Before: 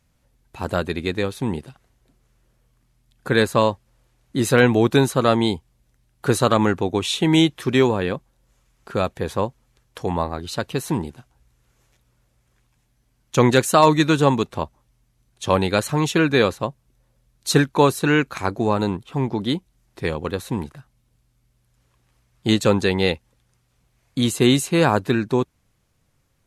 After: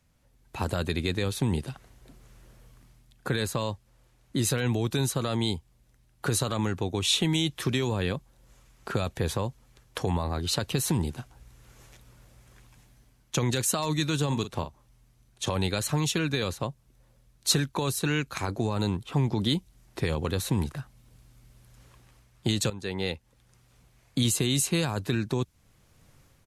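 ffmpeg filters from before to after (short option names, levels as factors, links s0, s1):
-filter_complex "[0:a]asplit=3[s0][s1][s2];[s0]afade=t=out:st=14.31:d=0.02[s3];[s1]asplit=2[s4][s5];[s5]adelay=43,volume=0.251[s6];[s4][s6]amix=inputs=2:normalize=0,afade=t=in:st=14.31:d=0.02,afade=t=out:st=15.48:d=0.02[s7];[s2]afade=t=in:st=15.48:d=0.02[s8];[s3][s7][s8]amix=inputs=3:normalize=0,asplit=2[s9][s10];[s9]atrim=end=22.7,asetpts=PTS-STARTPTS,afade=t=out:st=22.696:d=0.004:c=hsin:silence=0.125893[s11];[s10]atrim=start=22.7,asetpts=PTS-STARTPTS,afade=t=in:d=1.61:silence=0.125893[s12];[s11][s12]concat=n=2:v=0:a=1,dynaudnorm=f=180:g=5:m=3.76,alimiter=limit=0.398:level=0:latency=1:release=22,acrossover=split=140|3000[s13][s14][s15];[s14]acompressor=threshold=0.0501:ratio=6[s16];[s13][s16][s15]amix=inputs=3:normalize=0,volume=0.794"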